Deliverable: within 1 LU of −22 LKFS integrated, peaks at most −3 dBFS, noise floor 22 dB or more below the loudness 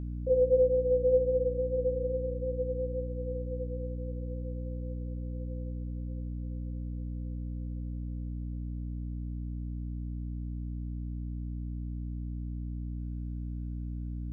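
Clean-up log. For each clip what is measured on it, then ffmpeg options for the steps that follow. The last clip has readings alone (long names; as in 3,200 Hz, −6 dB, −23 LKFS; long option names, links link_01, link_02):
mains hum 60 Hz; hum harmonics up to 300 Hz; level of the hum −34 dBFS; integrated loudness −34.0 LKFS; sample peak −15.5 dBFS; target loudness −22.0 LKFS
→ -af "bandreject=frequency=60:width_type=h:width=4,bandreject=frequency=120:width_type=h:width=4,bandreject=frequency=180:width_type=h:width=4,bandreject=frequency=240:width_type=h:width=4,bandreject=frequency=300:width_type=h:width=4"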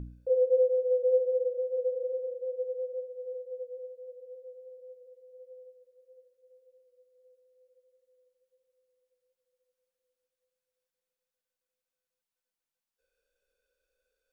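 mains hum none found; integrated loudness −30.0 LKFS; sample peak −16.5 dBFS; target loudness −22.0 LKFS
→ -af "volume=8dB"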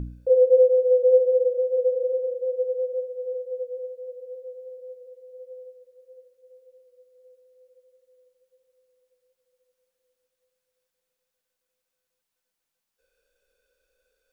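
integrated loudness −22.0 LKFS; sample peak −8.5 dBFS; background noise floor −83 dBFS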